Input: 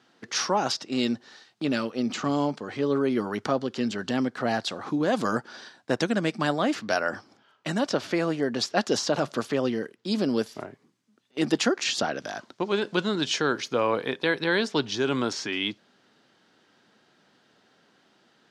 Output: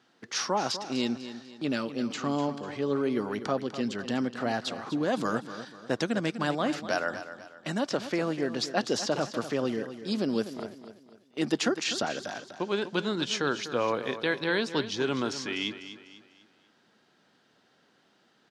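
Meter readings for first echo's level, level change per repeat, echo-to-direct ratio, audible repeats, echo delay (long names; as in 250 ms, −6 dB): −12.0 dB, −8.0 dB, −11.5 dB, 3, 248 ms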